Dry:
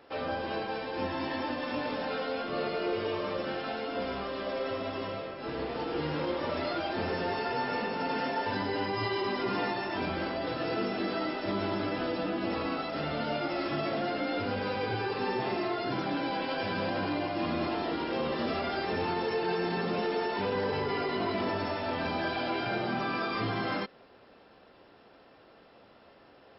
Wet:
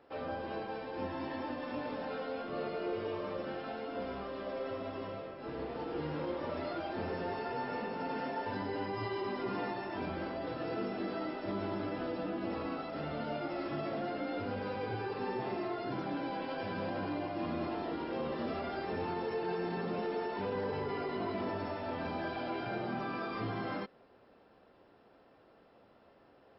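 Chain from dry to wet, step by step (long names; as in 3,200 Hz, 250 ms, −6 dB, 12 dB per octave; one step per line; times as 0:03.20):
high-shelf EQ 2,100 Hz −9 dB
level −4.5 dB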